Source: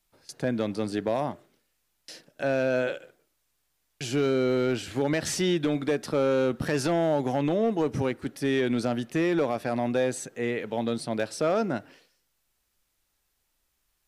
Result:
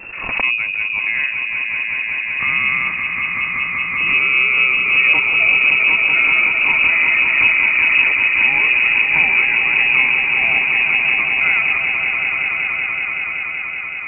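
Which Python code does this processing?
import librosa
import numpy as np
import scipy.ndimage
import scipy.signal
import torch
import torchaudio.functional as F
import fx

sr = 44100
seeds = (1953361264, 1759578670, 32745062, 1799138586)

y = fx.peak_eq(x, sr, hz=130.0, db=13.0, octaves=0.76)
y = fx.echo_swell(y, sr, ms=189, loudest=5, wet_db=-7.0)
y = fx.freq_invert(y, sr, carrier_hz=2700)
y = fx.pre_swell(y, sr, db_per_s=47.0)
y = y * 10.0 ** (4.0 / 20.0)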